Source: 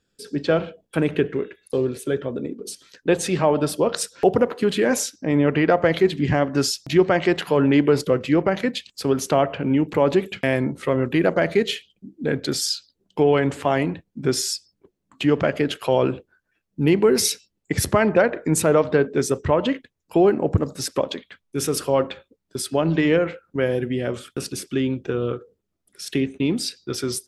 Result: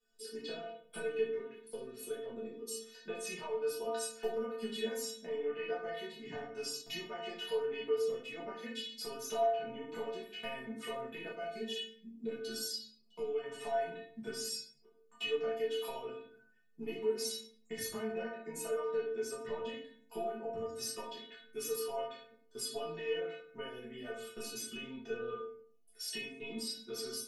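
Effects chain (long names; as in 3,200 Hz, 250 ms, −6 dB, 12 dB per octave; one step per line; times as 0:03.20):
bass and treble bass −10 dB, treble +1 dB
downward compressor 6 to 1, threshold −31 dBFS, peak gain reduction 17.5 dB
stiff-string resonator 220 Hz, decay 0.46 s, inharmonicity 0.008
rectangular room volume 53 cubic metres, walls mixed, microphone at 1.4 metres
0:11.32–0:13.44: phaser whose notches keep moving one way rising 1.1 Hz
level +3.5 dB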